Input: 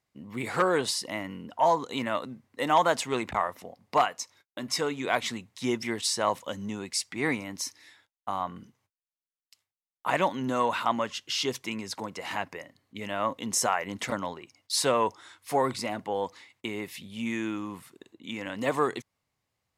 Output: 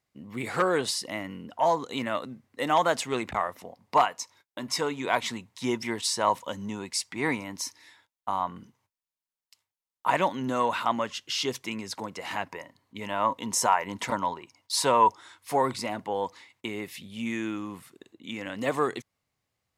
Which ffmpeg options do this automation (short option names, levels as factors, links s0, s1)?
-af "asetnsamples=n=441:p=0,asendcmd='3.59 equalizer g 7.5;10.19 equalizer g 1;12.5 equalizer g 12.5;15.08 equalizer g 4;16.68 equalizer g -3',equalizer=f=950:t=o:w=0.23:g=-2.5"